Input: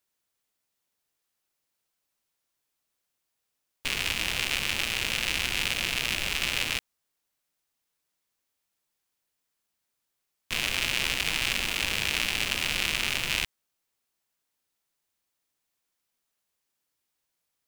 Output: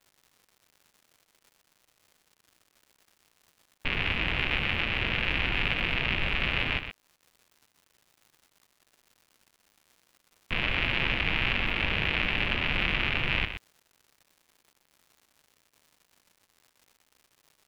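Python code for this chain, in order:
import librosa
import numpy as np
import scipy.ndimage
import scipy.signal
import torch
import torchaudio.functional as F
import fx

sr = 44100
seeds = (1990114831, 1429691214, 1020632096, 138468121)

y = scipy.signal.sosfilt(scipy.signal.butter(4, 2800.0, 'lowpass', fs=sr, output='sos'), x)
y = fx.low_shelf(y, sr, hz=240.0, db=6.0)
y = fx.dmg_crackle(y, sr, seeds[0], per_s=190.0, level_db=-49.0)
y = y + 10.0 ** (-9.5 / 20.0) * np.pad(y, (int(123 * sr / 1000.0), 0))[:len(y)]
y = F.gain(torch.from_numpy(y), 2.0).numpy()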